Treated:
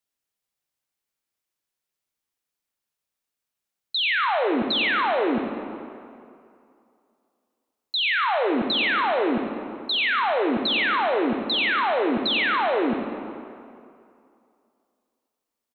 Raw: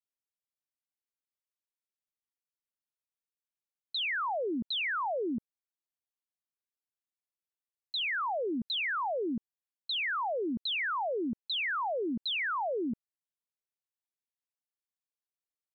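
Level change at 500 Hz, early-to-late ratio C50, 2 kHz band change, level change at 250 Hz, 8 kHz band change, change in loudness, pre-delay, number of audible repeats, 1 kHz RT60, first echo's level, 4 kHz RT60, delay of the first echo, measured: +10.5 dB, 4.0 dB, +10.0 dB, +10.0 dB, no reading, +10.0 dB, 26 ms, 1, 2.6 s, -11.0 dB, 1.6 s, 90 ms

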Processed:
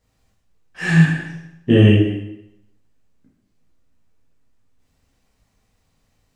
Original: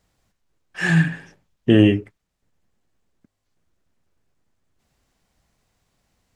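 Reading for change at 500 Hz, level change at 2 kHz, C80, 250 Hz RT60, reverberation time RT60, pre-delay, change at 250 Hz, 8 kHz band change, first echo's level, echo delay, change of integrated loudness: +2.5 dB, +1.0 dB, 5.5 dB, 0.90 s, 0.85 s, 11 ms, +2.0 dB, no reading, no echo, no echo, +2.5 dB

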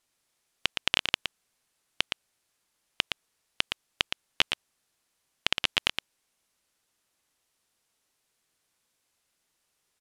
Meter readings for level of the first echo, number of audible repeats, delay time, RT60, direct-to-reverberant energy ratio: -6.5 dB, 1, 116 ms, no reverb, no reverb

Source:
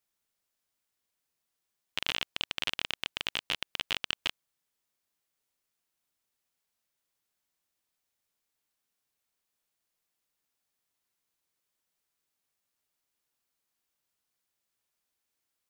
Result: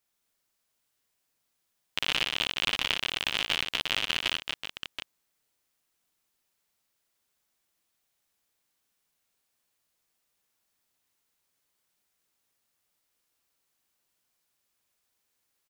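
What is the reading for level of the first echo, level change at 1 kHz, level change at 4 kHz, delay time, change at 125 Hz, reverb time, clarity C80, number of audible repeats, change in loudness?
-3.0 dB, +5.5 dB, +5.5 dB, 58 ms, +5.5 dB, no reverb, no reverb, 4, +5.0 dB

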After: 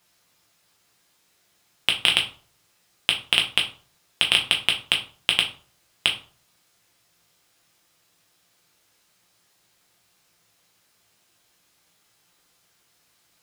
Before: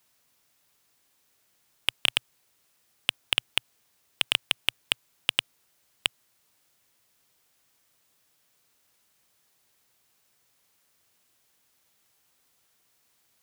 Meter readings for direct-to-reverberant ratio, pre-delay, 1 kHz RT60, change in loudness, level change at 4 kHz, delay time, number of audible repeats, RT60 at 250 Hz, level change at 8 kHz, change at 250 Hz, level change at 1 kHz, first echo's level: 1.0 dB, 6 ms, 0.45 s, +6.0 dB, +6.5 dB, no echo, no echo, 0.45 s, +3.5 dB, +7.0 dB, +6.0 dB, no echo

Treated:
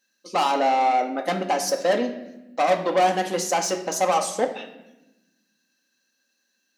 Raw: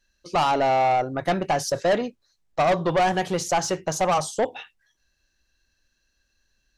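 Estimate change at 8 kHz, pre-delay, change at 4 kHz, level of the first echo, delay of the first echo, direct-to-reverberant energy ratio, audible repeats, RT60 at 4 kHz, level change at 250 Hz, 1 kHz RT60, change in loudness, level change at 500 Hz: +2.5 dB, 4 ms, +1.5 dB, no echo, no echo, 3.5 dB, no echo, 0.80 s, -0.5 dB, 0.90 s, +0.5 dB, 0.0 dB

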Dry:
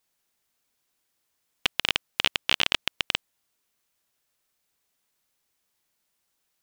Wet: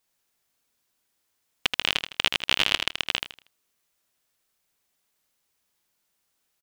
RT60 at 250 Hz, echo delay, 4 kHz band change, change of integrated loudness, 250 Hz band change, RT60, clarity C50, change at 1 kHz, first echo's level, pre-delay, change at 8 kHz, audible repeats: no reverb, 79 ms, +1.0 dB, +1.0 dB, +1.0 dB, no reverb, no reverb, +1.0 dB, -6.0 dB, no reverb, +1.0 dB, 3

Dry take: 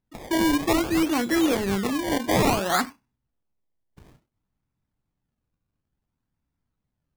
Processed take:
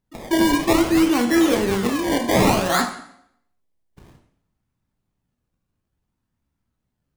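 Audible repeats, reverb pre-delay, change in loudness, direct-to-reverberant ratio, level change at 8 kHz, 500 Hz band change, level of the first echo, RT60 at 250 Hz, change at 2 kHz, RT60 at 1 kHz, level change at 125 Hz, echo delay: no echo, 5 ms, +4.5 dB, 4.0 dB, +4.0 dB, +5.0 dB, no echo, 0.70 s, +4.0 dB, 0.70 s, +4.0 dB, no echo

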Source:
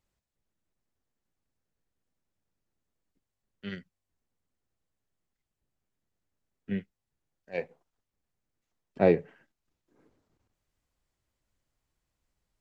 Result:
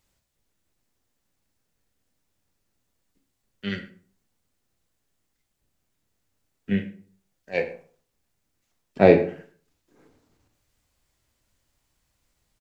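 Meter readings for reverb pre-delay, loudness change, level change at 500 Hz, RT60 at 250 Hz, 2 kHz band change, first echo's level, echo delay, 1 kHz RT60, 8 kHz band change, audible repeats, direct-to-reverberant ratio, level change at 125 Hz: 16 ms, +7.0 dB, +8.0 dB, 0.50 s, +10.0 dB, -19.0 dB, 109 ms, 0.50 s, no reading, 1, 6.0 dB, +7.5 dB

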